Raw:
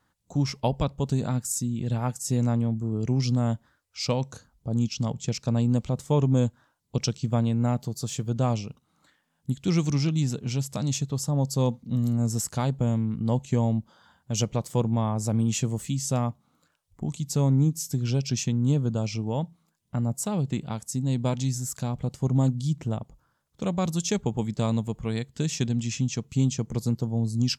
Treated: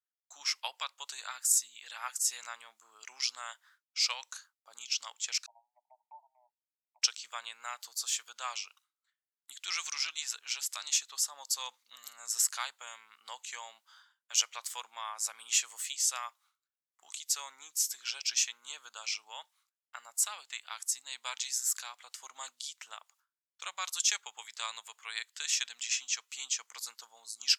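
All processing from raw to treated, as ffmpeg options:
-filter_complex "[0:a]asettb=1/sr,asplit=3[s0][s1][s2];[s0]atrim=end=5.464[s3];[s1]atrim=start=5.46:end=7.02,asetpts=PTS-STARTPTS,afade=t=in:d=0.004:c=qsin,afade=t=out:st=1.556:d=0.004:c=qsin,acompressor=threshold=0.0398:ratio=2:attack=3.2:release=140:knee=1:detection=peak,asuperpass=centerf=760:order=20:qfactor=2.2[s4];[s2]atrim=start=7.016[s5];[s3][s4]acrossfade=d=0.004:c1=hsin:c2=qsin[s6];[s6][s5]acrossfade=d=0.004:c1=qsin:c2=hsin,agate=range=0.0224:threshold=0.00398:ratio=3:detection=peak,highpass=f=1300:w=0.5412,highpass=f=1300:w=1.3066,volume=1.5"

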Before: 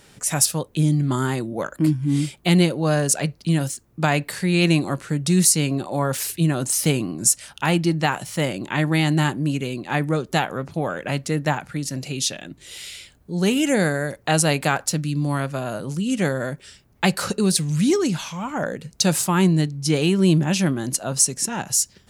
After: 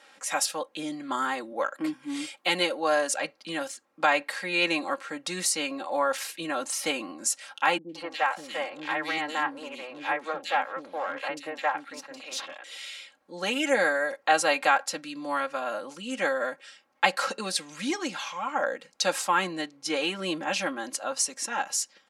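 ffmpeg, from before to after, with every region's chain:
-filter_complex "[0:a]asettb=1/sr,asplit=3[s0][s1][s2];[s0]atrim=end=1.934[s3];[s1]atrim=start=1.93:end=3.09,asetpts=PTS-STARTPTS,afade=t=in:d=0.004:c=qsin,afade=t=out:st=1.156:d=0.004:c=qsin,highpass=150,highshelf=f=5500:g=5.5[s4];[s2]atrim=start=3.086[s5];[s3][s4]acrossfade=d=0.004:c1=hsin:c2=qsin[s6];[s6][s5]acrossfade=d=0.004:c1=qsin:c2=hsin,asettb=1/sr,asplit=3[s7][s8][s9];[s7]atrim=end=7.784[s10];[s8]atrim=start=7.78:end=12.64,asetpts=PTS-STARTPTS,afade=t=in:d=0.004:c=qsin,afade=t=out:st=4.856:d=0.004:c=qsin,aeval=exprs='if(lt(val(0),0),0.251*val(0),val(0))':c=same,highshelf=f=8900:g=-4.5,acrossover=split=350|2700[s11][s12][s13];[s13]adelay=110[s14];[s12]adelay=170[s15];[s11][s15][s14]amix=inputs=3:normalize=0,atrim=end_sample=214326[s16];[s9]atrim=start=12.636[s17];[s10][s16]acrossfade=d=0.004:c1=hsin:c2=qsin[s18];[s18][s17]acrossfade=d=0.004:c1=qsin:c2=hsin,highpass=710,aemphasis=mode=reproduction:type=75fm,aecho=1:1:3.7:0.77"

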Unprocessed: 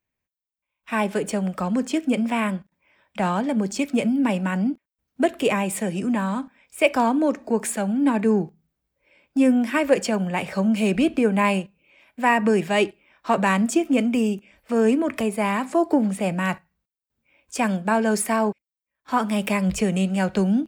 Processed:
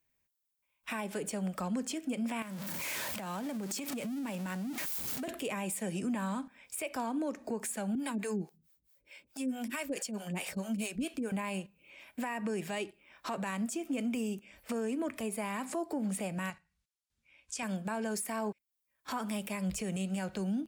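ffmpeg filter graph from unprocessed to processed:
-filter_complex "[0:a]asettb=1/sr,asplit=3[s0][s1][s2];[s0]atrim=end=2.424[s3];[s1]atrim=start=2.42:end=5.28,asetpts=PTS-STARTPTS,afade=t=in:d=0.004:c=qsin,afade=t=out:st=2.856:d=0.004:c=qsin,aeval=exprs='val(0)+0.5*0.0335*sgn(val(0))':c=same,highpass=110,acompressor=threshold=0.0282:ratio=10:attack=3.2:release=140:knee=1:detection=peak[s4];[s2]atrim=start=5.276[s5];[s3][s4]acrossfade=d=0.004:c1=hsin:c2=qsin[s6];[s6][s5]acrossfade=d=0.004:c1=qsin:c2=hsin,asettb=1/sr,asplit=3[s7][s8][s9];[s7]atrim=end=7.954[s10];[s8]atrim=start=7.95:end=11.32,asetpts=PTS-STARTPTS,afade=t=in:d=0.004:c=qsin,afade=t=out:st=3.366:d=0.004:c=qsin,highshelf=f=2300:g=10,acrossover=split=410[s11][s12];[s11]aeval=exprs='val(0)*(1-1/2+1/2*cos(2*PI*4.6*n/s))':c=same[s13];[s12]aeval=exprs='val(0)*(1-1/2-1/2*cos(2*PI*4.6*n/s))':c=same[s14];[s13][s14]amix=inputs=2:normalize=0[s15];[s9]atrim=start=11.316[s16];[s10][s15]acrossfade=d=0.004:c1=hsin:c2=qsin[s17];[s17][s16]acrossfade=d=0.004:c1=qsin:c2=hsin,asettb=1/sr,asplit=3[s18][s19][s20];[s18]atrim=end=16.504[s21];[s19]atrim=start=16.5:end=17.63,asetpts=PTS-STARTPTS,afade=t=in:d=0.004:c=qsin,afade=t=out:st=1.126:d=0.004:c=qsin,lowpass=7300,equalizer=f=430:w=0.35:g=-11[s22];[s20]atrim=start=17.626[s23];[s21][s22]acrossfade=d=0.004:c1=hsin:c2=qsin[s24];[s24][s23]acrossfade=d=0.004:c1=qsin:c2=hsin,aemphasis=mode=production:type=cd,acompressor=threshold=0.0141:ratio=2,alimiter=level_in=1.41:limit=0.0631:level=0:latency=1:release=116,volume=0.708"

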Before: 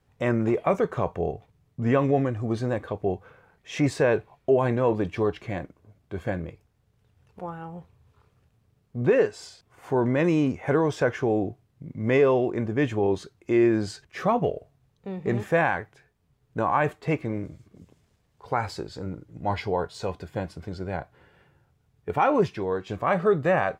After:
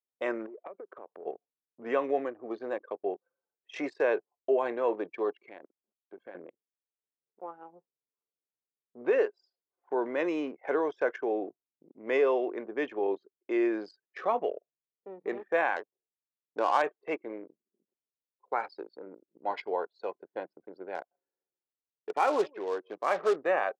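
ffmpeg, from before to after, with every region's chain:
-filter_complex "[0:a]asettb=1/sr,asplit=3[s0][s1][s2];[s0]atrim=end=0.464[s3];[s1]atrim=start=0.46:end=1.26,asetpts=PTS-STARTPTS,afade=t=in:d=0.004:c=qsin,afade=t=out:st=0.796:d=0.004:c=qsin,asubboost=boost=8:cutoff=75,acompressor=threshold=0.0224:ratio=12:attack=3.2:release=140:knee=1:detection=peak[s4];[s2]atrim=start=1.256[s5];[s3][s4]acrossfade=d=0.004:c1=hsin:c2=qsin[s6];[s6][s5]acrossfade=d=0.004:c1=qsin:c2=hsin,asettb=1/sr,asplit=3[s7][s8][s9];[s7]atrim=end=5.414[s10];[s8]atrim=start=5.41:end=6.35,asetpts=PTS-STARTPTS,afade=t=in:d=0.004:c=qsin,afade=t=out:st=0.936:d=0.004:c=qsin,highshelf=f=2700:g=10.5,acompressor=threshold=0.0251:ratio=8:attack=3.2:release=140:knee=1:detection=peak,aeval=exprs='val(0)*gte(abs(val(0)),0.00316)':c=same[s11];[s9]atrim=start=6.346[s12];[s10][s11]acrossfade=d=0.004:c1=hsin:c2=qsin[s13];[s13][s12]acrossfade=d=0.004:c1=qsin:c2=hsin,asettb=1/sr,asplit=3[s14][s15][s16];[s14]atrim=end=15.764[s17];[s15]atrim=start=15.76:end=16.82,asetpts=PTS-STARTPTS,afade=t=in:d=0.004:c=qsin,afade=t=out:st=1.056:d=0.004:c=qsin,equalizer=f=590:t=o:w=1.7:g=3.5,adynamicsmooth=sensitivity=4:basefreq=680[s18];[s16]atrim=start=16.816[s19];[s17][s18]acrossfade=d=0.004:c1=hsin:c2=qsin[s20];[s20][s19]acrossfade=d=0.004:c1=qsin:c2=hsin,asettb=1/sr,asplit=3[s21][s22][s23];[s21]atrim=end=20.954[s24];[s22]atrim=start=20.95:end=23.36,asetpts=PTS-STARTPTS,afade=t=in:d=0.004:c=qsin,afade=t=out:st=2.406:d=0.004:c=qsin,acrusher=bits=4:mode=log:mix=0:aa=0.000001,aecho=1:1:163:0.0944,atrim=end_sample=106281[s25];[s23]atrim=start=23.356[s26];[s24][s25]acrossfade=d=0.004:c1=hsin:c2=qsin[s27];[s27][s26]acrossfade=d=0.004:c1=qsin:c2=hsin,lowpass=6400,anlmdn=6.31,highpass=f=340:w=0.5412,highpass=f=340:w=1.3066,volume=0.596"

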